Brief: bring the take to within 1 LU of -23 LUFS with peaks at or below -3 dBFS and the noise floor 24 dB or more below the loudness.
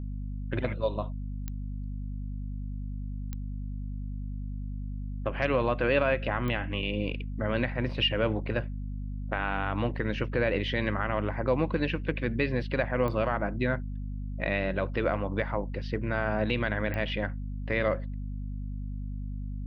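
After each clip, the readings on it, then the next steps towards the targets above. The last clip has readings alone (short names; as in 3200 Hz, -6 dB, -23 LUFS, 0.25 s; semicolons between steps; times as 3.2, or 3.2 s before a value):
clicks 5; hum 50 Hz; harmonics up to 250 Hz; hum level -32 dBFS; loudness -31.0 LUFS; peak -11.5 dBFS; loudness target -23.0 LUFS
-> de-click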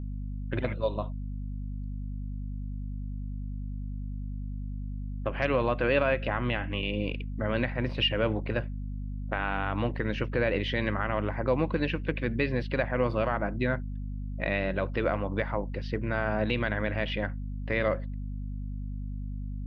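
clicks 0; hum 50 Hz; harmonics up to 250 Hz; hum level -32 dBFS
-> de-hum 50 Hz, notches 5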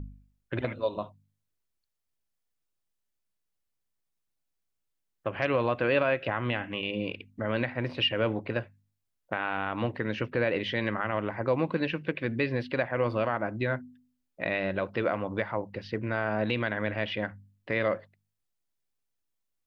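hum none; loudness -30.5 LUFS; peak -12.0 dBFS; loudness target -23.0 LUFS
-> gain +7.5 dB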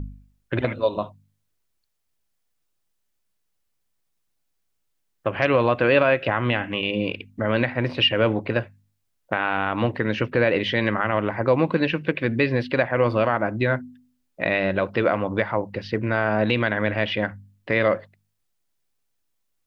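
loudness -23.0 LUFS; peak -4.5 dBFS; noise floor -73 dBFS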